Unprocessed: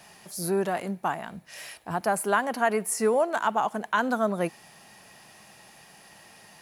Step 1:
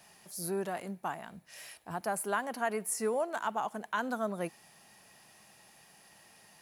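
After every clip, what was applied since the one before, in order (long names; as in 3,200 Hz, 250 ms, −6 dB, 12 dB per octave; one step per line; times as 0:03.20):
high-shelf EQ 6,900 Hz +5 dB
level −8.5 dB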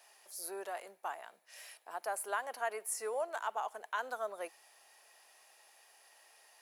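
high-pass filter 450 Hz 24 dB per octave
level −3.5 dB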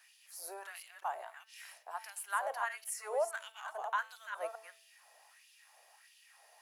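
delay that plays each chunk backwards 207 ms, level −6 dB
auto-filter high-pass sine 1.5 Hz 570–3,100 Hz
hum removal 221.9 Hz, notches 35
level −3 dB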